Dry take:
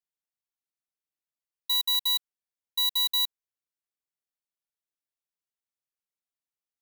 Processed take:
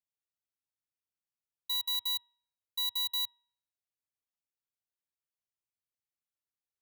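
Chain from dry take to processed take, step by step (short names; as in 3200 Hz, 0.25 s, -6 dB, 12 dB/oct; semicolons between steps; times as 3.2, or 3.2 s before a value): bell 98 Hz +11.5 dB 0.99 oct; de-hum 321.3 Hz, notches 12; gain -7 dB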